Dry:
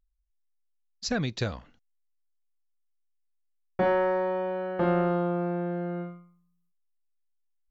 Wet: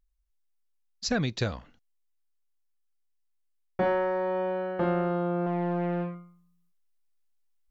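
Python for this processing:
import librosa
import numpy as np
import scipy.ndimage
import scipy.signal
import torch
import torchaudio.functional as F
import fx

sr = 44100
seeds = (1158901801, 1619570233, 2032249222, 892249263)

y = fx.rider(x, sr, range_db=10, speed_s=0.5)
y = fx.doppler_dist(y, sr, depth_ms=0.37, at=(5.46, 6.15))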